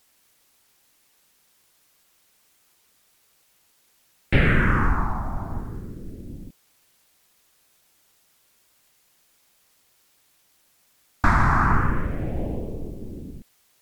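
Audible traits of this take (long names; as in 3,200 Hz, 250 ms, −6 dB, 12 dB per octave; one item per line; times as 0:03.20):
tremolo triangle 1.3 Hz, depth 35%
phaser sweep stages 4, 0.33 Hz, lowest notch 480–1,500 Hz
a quantiser's noise floor 12 bits, dither triangular
MP3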